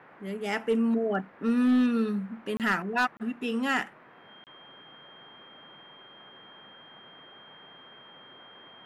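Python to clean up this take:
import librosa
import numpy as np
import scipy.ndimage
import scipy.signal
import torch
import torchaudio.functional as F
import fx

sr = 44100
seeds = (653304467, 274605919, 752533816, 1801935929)

y = fx.fix_declip(x, sr, threshold_db=-18.5)
y = fx.notch(y, sr, hz=3200.0, q=30.0)
y = fx.fix_interpolate(y, sr, at_s=(2.57, 3.17, 4.44), length_ms=28.0)
y = fx.noise_reduce(y, sr, print_start_s=3.9, print_end_s=4.4, reduce_db=22.0)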